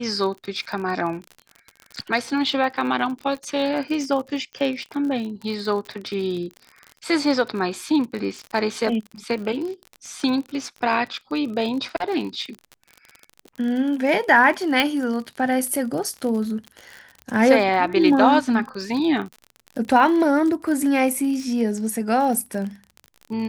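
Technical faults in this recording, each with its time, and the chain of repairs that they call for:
surface crackle 41 per second −29 dBFS
0:14.80: click −5 dBFS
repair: click removal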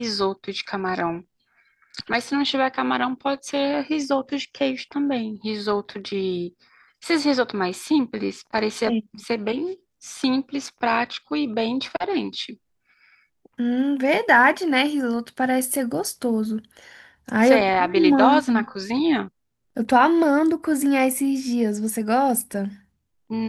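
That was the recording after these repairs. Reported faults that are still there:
none of them is left

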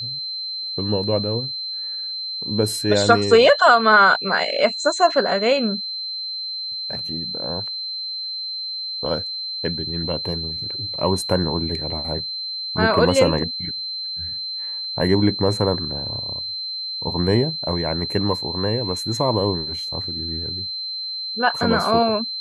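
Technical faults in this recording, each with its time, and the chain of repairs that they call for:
whistle 4,100 Hz −26 dBFS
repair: notch filter 4,100 Hz, Q 30

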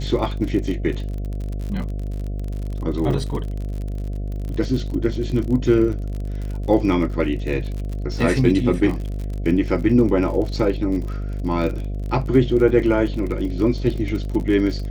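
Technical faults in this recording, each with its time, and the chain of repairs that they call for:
mains buzz 50 Hz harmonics 14 −26 dBFS
surface crackle 46 per second −28 dBFS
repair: click removal
hum removal 50 Hz, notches 14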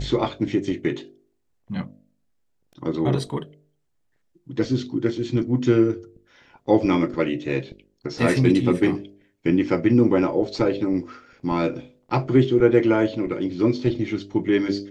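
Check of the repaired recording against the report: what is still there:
none of them is left

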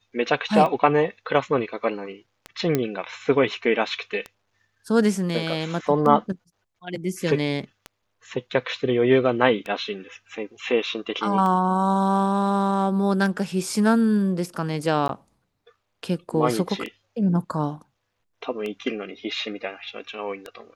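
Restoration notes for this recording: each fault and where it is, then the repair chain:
scratch tick 33 1/3 rpm −18 dBFS
0:02.75: click −8 dBFS
0:15.08–0:15.09: drop-out 12 ms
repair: click removal
repair the gap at 0:15.08, 12 ms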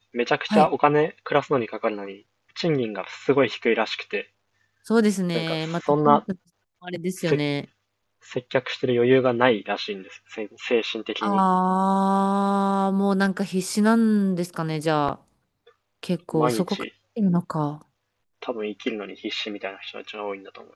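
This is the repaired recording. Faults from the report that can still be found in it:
none of them is left

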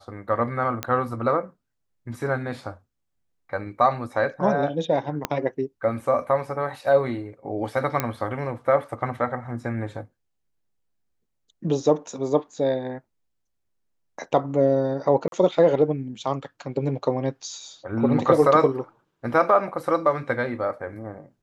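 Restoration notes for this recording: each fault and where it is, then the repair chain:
0:00.83: click −10 dBFS
0:05.25: click −8 dBFS
0:08.00: click −7 dBFS
0:15.28–0:15.32: drop-out 42 ms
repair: click removal
repair the gap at 0:15.28, 42 ms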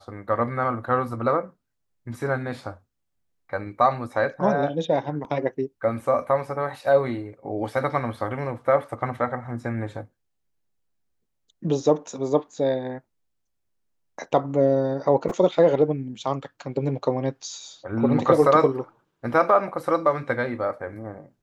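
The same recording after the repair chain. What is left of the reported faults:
0:05.25: click

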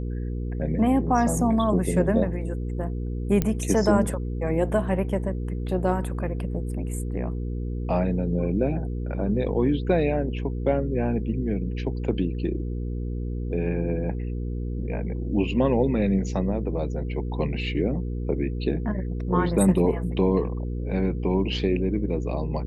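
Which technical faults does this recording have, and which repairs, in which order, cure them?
mains hum 60 Hz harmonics 8 −29 dBFS
0:03.42: click −10 dBFS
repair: click removal
hum removal 60 Hz, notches 8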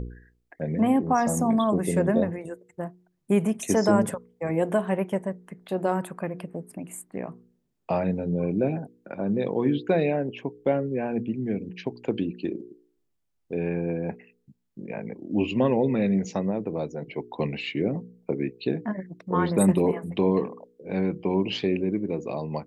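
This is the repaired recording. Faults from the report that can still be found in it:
none of them is left

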